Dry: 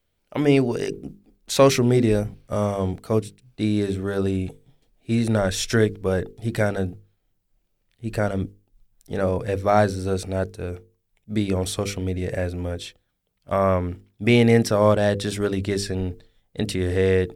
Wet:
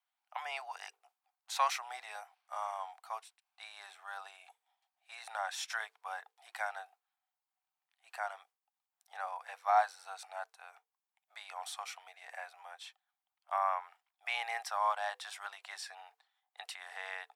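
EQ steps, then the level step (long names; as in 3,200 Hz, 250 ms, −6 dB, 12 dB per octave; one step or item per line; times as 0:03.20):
Chebyshev high-pass filter 750 Hz, order 6
tilt shelving filter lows +9 dB, about 1,100 Hz
−5.5 dB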